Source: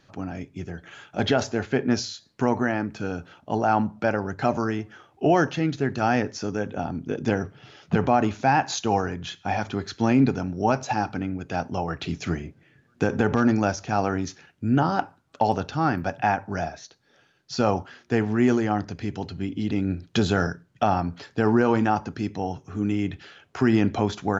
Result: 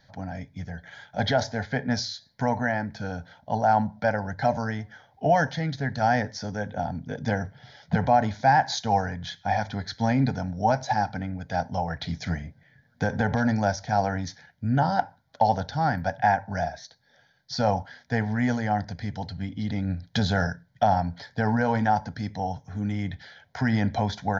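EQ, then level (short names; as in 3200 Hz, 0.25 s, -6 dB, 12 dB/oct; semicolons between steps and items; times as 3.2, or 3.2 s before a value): fixed phaser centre 1800 Hz, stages 8; +2.0 dB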